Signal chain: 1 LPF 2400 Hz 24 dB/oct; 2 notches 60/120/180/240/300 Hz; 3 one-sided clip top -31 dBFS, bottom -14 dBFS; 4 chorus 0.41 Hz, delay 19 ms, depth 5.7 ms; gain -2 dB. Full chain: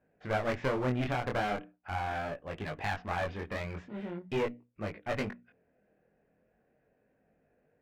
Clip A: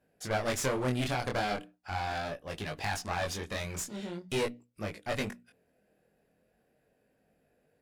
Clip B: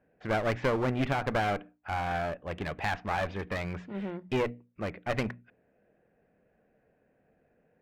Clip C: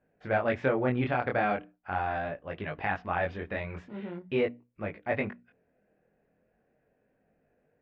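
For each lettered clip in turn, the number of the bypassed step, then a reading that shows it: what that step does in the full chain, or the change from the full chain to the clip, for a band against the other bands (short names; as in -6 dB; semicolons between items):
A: 1, 8 kHz band +17.0 dB; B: 4, crest factor change -1.5 dB; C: 3, distortion -6 dB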